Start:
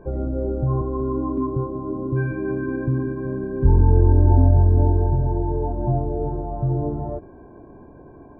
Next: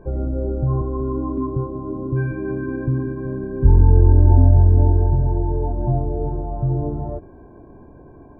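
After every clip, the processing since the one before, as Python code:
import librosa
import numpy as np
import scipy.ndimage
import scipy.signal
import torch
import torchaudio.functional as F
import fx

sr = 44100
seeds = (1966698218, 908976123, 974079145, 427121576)

y = fx.low_shelf(x, sr, hz=120.0, db=5.5)
y = y * 10.0 ** (-1.0 / 20.0)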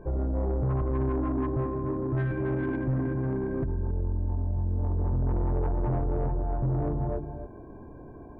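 y = fx.over_compress(x, sr, threshold_db=-17.0, ratio=-1.0)
y = y + 10.0 ** (-10.0 / 20.0) * np.pad(y, (int(276 * sr / 1000.0), 0))[:len(y)]
y = 10.0 ** (-18.5 / 20.0) * np.tanh(y / 10.0 ** (-18.5 / 20.0))
y = y * 10.0 ** (-4.5 / 20.0)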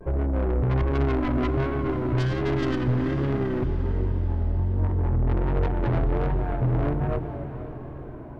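y = fx.tracing_dist(x, sr, depth_ms=0.43)
y = fx.vibrato(y, sr, rate_hz=1.3, depth_cents=93.0)
y = fx.echo_diffused(y, sr, ms=484, feedback_pct=55, wet_db=-11.5)
y = y * 10.0 ** (3.5 / 20.0)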